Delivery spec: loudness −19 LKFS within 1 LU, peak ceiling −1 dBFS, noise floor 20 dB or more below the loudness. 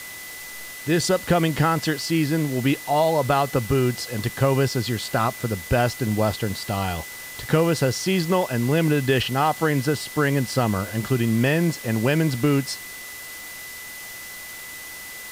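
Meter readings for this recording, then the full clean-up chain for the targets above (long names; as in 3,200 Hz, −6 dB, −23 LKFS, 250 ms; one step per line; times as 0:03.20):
interfering tone 2,000 Hz; level of the tone −38 dBFS; background noise floor −37 dBFS; target noise floor −43 dBFS; integrated loudness −22.5 LKFS; sample peak −7.5 dBFS; target loudness −19.0 LKFS
→ notch filter 2,000 Hz, Q 30
broadband denoise 6 dB, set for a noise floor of −37 dBFS
level +3.5 dB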